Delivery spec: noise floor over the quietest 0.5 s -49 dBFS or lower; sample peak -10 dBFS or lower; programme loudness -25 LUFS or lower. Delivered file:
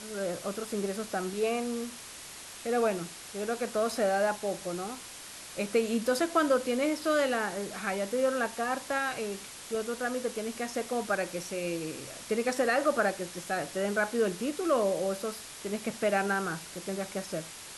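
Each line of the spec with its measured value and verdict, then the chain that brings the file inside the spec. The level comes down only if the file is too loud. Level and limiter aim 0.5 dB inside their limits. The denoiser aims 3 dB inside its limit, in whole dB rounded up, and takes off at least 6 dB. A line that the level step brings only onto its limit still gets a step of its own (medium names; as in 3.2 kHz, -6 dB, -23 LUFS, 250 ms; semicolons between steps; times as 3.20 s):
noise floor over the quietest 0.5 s -45 dBFS: fail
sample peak -14.5 dBFS: pass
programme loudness -31.0 LUFS: pass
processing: noise reduction 7 dB, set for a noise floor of -45 dBFS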